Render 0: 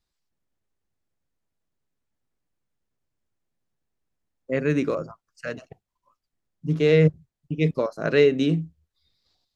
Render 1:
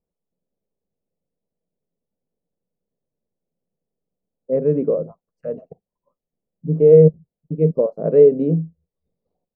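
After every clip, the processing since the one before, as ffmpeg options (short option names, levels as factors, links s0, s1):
-af "firequalizer=gain_entry='entry(120,0);entry(170,12);entry(320,4);entry(470,15);entry(810,2);entry(1500,-17);entry(2300,-18);entry(3600,-29)':delay=0.05:min_phase=1,volume=0.562"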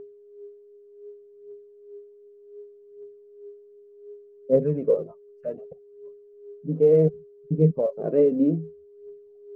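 -af "aeval=exprs='val(0)+0.0112*sin(2*PI*410*n/s)':c=same,aphaser=in_gain=1:out_gain=1:delay=4.2:decay=0.57:speed=0.66:type=triangular,volume=0.531"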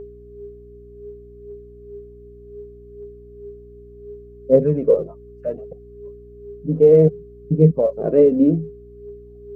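-af "aeval=exprs='val(0)+0.00316*(sin(2*PI*60*n/s)+sin(2*PI*2*60*n/s)/2+sin(2*PI*3*60*n/s)/3+sin(2*PI*4*60*n/s)/4+sin(2*PI*5*60*n/s)/5)':c=same,volume=2"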